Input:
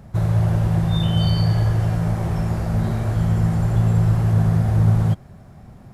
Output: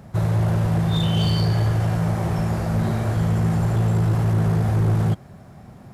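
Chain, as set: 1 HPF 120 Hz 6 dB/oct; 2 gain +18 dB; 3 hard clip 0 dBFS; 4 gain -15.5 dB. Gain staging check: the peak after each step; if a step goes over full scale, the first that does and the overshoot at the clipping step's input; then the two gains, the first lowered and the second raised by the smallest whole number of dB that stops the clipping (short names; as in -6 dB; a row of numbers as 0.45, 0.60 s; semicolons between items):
-9.5, +8.5, 0.0, -15.5 dBFS; step 2, 8.5 dB; step 2 +9 dB, step 4 -6.5 dB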